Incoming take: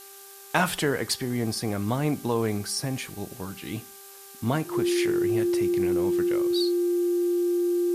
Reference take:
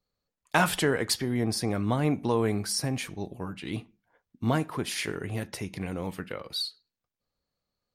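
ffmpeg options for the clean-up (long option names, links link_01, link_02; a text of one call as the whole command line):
ffmpeg -i in.wav -af "bandreject=frequency=394.8:width_type=h:width=4,bandreject=frequency=789.6:width_type=h:width=4,bandreject=frequency=1184.4:width_type=h:width=4,bandreject=frequency=1579.2:width_type=h:width=4,bandreject=frequency=350:width=30,afftdn=noise_reduction=30:noise_floor=-46" out.wav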